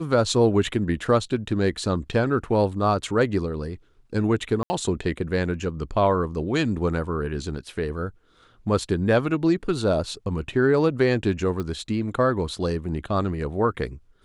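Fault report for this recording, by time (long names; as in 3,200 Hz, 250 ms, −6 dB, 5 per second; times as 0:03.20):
0:04.63–0:04.70: drop-out 70 ms
0:11.60: click −18 dBFS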